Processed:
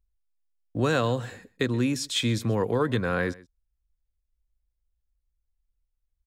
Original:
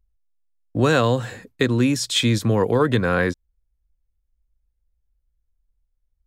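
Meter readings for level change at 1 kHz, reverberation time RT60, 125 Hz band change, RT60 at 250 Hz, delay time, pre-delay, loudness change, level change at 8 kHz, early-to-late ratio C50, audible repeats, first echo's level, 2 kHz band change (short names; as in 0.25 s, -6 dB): -6.5 dB, none, -6.5 dB, none, 0.129 s, none, -6.5 dB, -6.5 dB, none, 1, -21.5 dB, -6.5 dB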